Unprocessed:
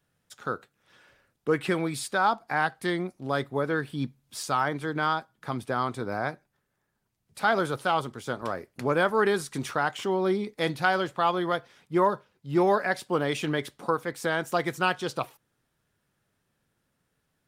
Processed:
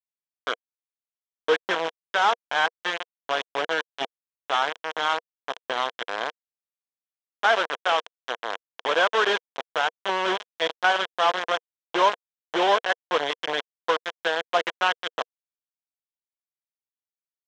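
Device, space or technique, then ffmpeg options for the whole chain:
hand-held game console: -filter_complex "[0:a]acrusher=bits=3:mix=0:aa=0.000001,highpass=410,equalizer=frequency=480:width_type=q:width=4:gain=7,equalizer=frequency=690:width_type=q:width=4:gain=6,equalizer=frequency=1000:width_type=q:width=4:gain=6,equalizer=frequency=1600:width_type=q:width=4:gain=6,equalizer=frequency=3200:width_type=q:width=4:gain=9,equalizer=frequency=4600:width_type=q:width=4:gain=-8,lowpass=frequency=5400:width=0.5412,lowpass=frequency=5400:width=1.3066,asettb=1/sr,asplit=3[link_01][link_02][link_03];[link_01]atrim=end=7.484[link_04];[link_02]atrim=start=7.48:end=9.28,asetpts=PTS-STARTPTS,afade=type=in:duration=0.004:curve=qsin,afade=type=out:start_time=1.796:duration=0.004:curve=qsin,highpass=frequency=190:poles=1[link_05];[link_03]atrim=start=9.276[link_06];[link_04][link_05]acrossfade=duration=0.004:curve1=hsin:curve2=qsin[link_07];[link_07][link_06]acrossfade=duration=0.004:curve1=qsin:curve2=hsin,volume=-2dB"

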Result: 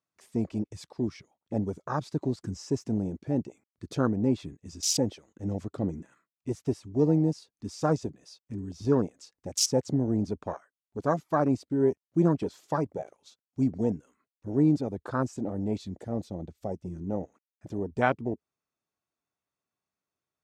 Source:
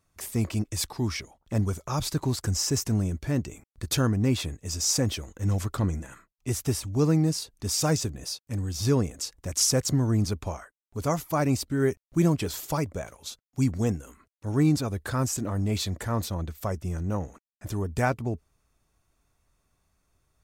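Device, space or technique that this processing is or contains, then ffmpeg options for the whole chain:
over-cleaned archive recording: -filter_complex "[0:a]asettb=1/sr,asplit=3[link_01][link_02][link_03];[link_01]atrim=end=15.774[link_04];[link_02]atrim=start=15.77:end=17.07,asetpts=PTS-STARTPTS,afade=type=in:duration=0.004:curve=qsin,afade=type=out:start_time=1.296:duration=0.004:curve=qsin,equalizer=frequency=1400:width_type=o:width=2.2:gain=-5.5[link_05];[link_03]atrim=start=17.066[link_06];[link_04][link_05]acrossfade=duration=0.004:curve1=hsin:curve2=qsin[link_07];[link_07][link_06]acrossfade=duration=0.004:curve1=qsin:curve2=hsin,highpass=190,lowpass=6700,afwtdn=0.0282,volume=1.5dB"

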